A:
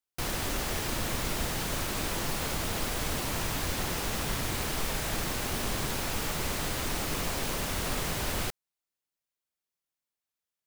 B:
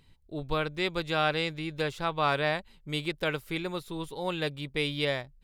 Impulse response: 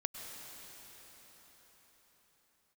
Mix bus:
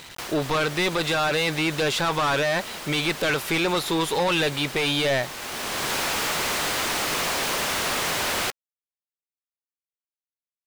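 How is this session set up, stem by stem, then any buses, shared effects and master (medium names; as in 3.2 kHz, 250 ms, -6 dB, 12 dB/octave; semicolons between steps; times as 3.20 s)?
-9.0 dB, 0.00 s, no send, de-hum 276.7 Hz, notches 3; auto duck -13 dB, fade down 0.30 s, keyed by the second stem
+2.0 dB, 0.00 s, no send, none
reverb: none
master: word length cut 10-bit, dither none; overdrive pedal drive 28 dB, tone 5.8 kHz, clips at -11.5 dBFS; peak limiter -17.5 dBFS, peak gain reduction 5.5 dB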